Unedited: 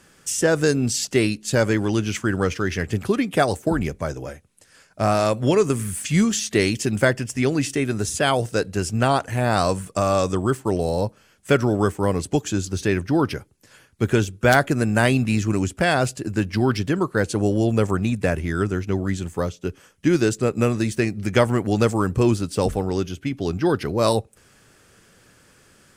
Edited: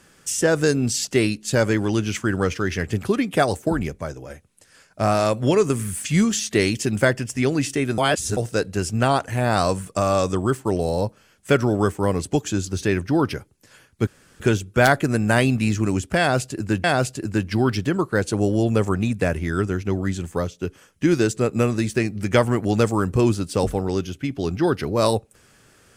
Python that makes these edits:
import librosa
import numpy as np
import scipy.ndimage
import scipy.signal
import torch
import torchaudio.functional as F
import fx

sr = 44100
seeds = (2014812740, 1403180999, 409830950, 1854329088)

y = fx.edit(x, sr, fx.fade_out_to(start_s=3.63, length_s=0.67, floor_db=-6.0),
    fx.reverse_span(start_s=7.98, length_s=0.39),
    fx.insert_room_tone(at_s=14.07, length_s=0.33),
    fx.repeat(start_s=15.86, length_s=0.65, count=2), tone=tone)